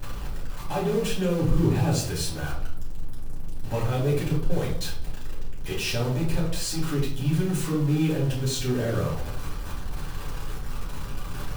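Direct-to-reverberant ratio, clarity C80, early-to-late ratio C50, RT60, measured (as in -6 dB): -6.5 dB, 9.5 dB, 5.0 dB, 0.65 s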